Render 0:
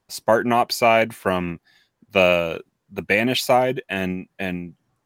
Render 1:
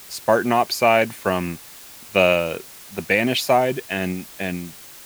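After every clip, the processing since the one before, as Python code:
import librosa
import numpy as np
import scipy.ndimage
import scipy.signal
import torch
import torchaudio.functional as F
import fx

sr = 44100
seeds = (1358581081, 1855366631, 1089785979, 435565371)

y = fx.dmg_noise_colour(x, sr, seeds[0], colour='white', level_db=-42.0)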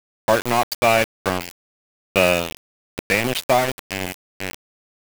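y = np.where(np.abs(x) >= 10.0 ** (-18.0 / 20.0), x, 0.0)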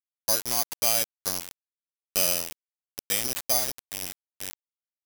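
y = (np.kron(x[::8], np.eye(8)[0]) * 8)[:len(x)]
y = F.gain(torch.from_numpy(y), -16.5).numpy()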